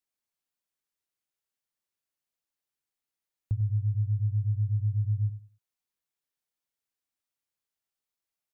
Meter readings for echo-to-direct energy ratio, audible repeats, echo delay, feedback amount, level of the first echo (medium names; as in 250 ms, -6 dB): -12.0 dB, 2, 96 ms, 21%, -12.0 dB